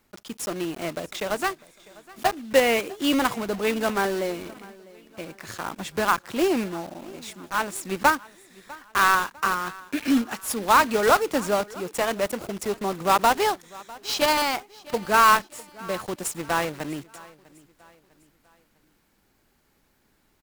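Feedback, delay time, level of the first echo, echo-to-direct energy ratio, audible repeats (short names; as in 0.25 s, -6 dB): 43%, 0.65 s, -22.0 dB, -21.0 dB, 2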